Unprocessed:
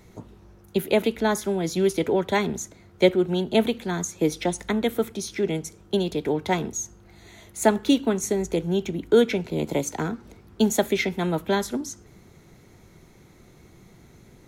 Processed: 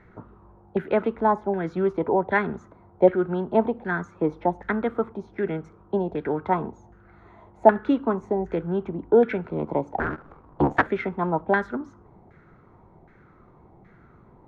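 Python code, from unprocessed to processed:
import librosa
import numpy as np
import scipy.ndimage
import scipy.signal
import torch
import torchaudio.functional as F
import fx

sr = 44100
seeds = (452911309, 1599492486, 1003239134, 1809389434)

y = fx.cycle_switch(x, sr, every=3, mode='inverted', at=(9.98, 10.87))
y = fx.filter_lfo_lowpass(y, sr, shape='saw_down', hz=1.3, low_hz=770.0, high_hz=1700.0, q=3.9)
y = F.gain(torch.from_numpy(y), -2.5).numpy()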